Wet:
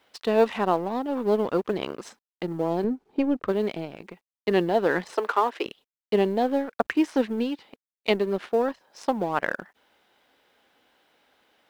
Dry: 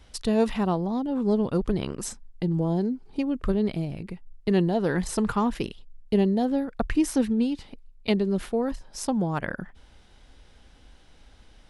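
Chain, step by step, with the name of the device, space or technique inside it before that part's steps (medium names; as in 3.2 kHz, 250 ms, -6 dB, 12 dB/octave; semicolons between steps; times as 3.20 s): phone line with mismatched companding (band-pass 390–3400 Hz; companding laws mixed up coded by A); 2.84–3.48 s: tilt EQ -2.5 dB/octave; 5.15–5.66 s: steep high-pass 300 Hz 36 dB/octave; trim +6.5 dB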